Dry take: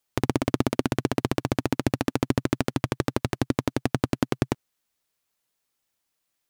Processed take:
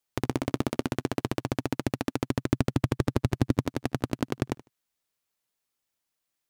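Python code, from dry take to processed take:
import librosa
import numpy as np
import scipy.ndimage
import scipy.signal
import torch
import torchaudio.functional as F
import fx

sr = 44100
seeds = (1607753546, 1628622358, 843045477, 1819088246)

y = fx.low_shelf(x, sr, hz=240.0, db=9.5, at=(2.49, 3.65))
y = fx.echo_feedback(y, sr, ms=76, feedback_pct=18, wet_db=-19)
y = y * 10.0 ** (-4.5 / 20.0)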